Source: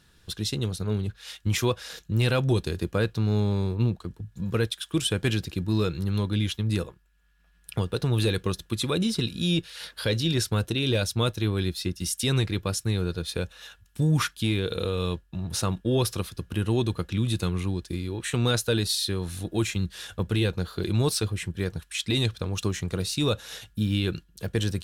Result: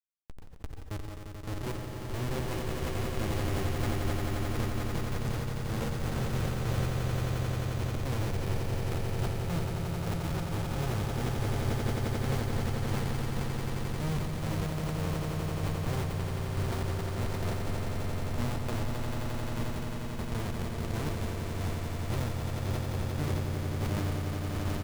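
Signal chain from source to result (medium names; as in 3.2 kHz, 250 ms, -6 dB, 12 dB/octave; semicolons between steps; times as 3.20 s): tracing distortion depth 0.4 ms; treble shelf 2.4 kHz -6.5 dB; Chebyshev shaper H 4 -12 dB, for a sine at -14 dBFS; in parallel at -0.5 dB: compression 12:1, threshold -32 dBFS, peak gain reduction 14.5 dB; 5.80–6.40 s: on the sum: frequency shift +25 Hz; Schmitt trigger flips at -22 dBFS; doubling 13 ms -12 dB; echo with a slow build-up 88 ms, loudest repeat 8, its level -7.5 dB; on a send at -12 dB: reverberation RT60 2.2 s, pre-delay 120 ms; on the sum: decay stretcher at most 34 dB/s; trim -8 dB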